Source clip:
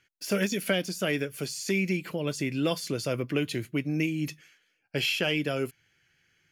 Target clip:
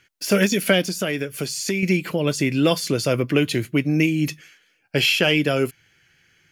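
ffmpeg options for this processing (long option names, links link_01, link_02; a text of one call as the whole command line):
ffmpeg -i in.wav -filter_complex "[0:a]asettb=1/sr,asplit=3[link_01][link_02][link_03];[link_01]atrim=end=0.824[link_04];[link_02]atrim=start=0.82:end=1.83,asetpts=PTS-STARTPTS,afade=type=in:duration=0.004:curve=qsin,afade=type=out:start_time=1.006:duration=0.004:curve=qsin,acompressor=threshold=-32dB:ratio=2.5[link_05];[link_03]atrim=start=1.826[link_06];[link_04][link_05]acrossfade=duration=0.004:curve1=hsin:curve2=qsin[link_07];[link_07][link_06]acrossfade=duration=0.004:curve1=qsin:curve2=hsin,volume=9dB" out.wav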